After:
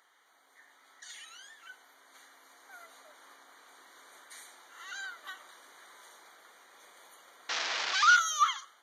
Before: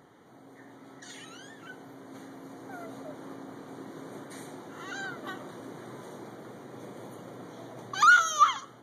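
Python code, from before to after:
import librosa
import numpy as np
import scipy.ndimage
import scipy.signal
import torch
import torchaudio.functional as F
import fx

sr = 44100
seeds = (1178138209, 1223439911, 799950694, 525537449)

y = fx.delta_mod(x, sr, bps=32000, step_db=-20.0, at=(7.49, 8.16))
y = scipy.signal.sosfilt(scipy.signal.butter(2, 1500.0, 'highpass', fs=sr, output='sos'), y)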